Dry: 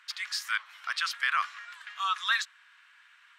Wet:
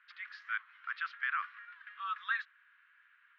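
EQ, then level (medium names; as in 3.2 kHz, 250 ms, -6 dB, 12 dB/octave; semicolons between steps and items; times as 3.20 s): ladder band-pass 1.8 kHz, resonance 40%; distance through air 250 m; +3.5 dB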